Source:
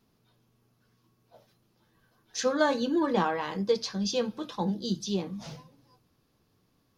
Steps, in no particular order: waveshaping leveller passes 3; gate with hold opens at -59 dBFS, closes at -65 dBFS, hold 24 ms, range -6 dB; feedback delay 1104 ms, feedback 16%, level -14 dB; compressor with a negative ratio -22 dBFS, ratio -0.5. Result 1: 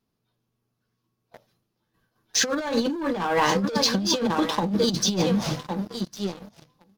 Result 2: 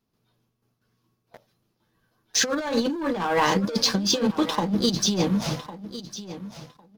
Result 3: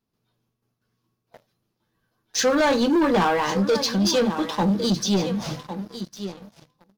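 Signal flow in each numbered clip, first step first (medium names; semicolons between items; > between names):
feedback delay > waveshaping leveller > compressor with a negative ratio > gate with hold; gate with hold > waveshaping leveller > compressor with a negative ratio > feedback delay; compressor with a negative ratio > gate with hold > feedback delay > waveshaping leveller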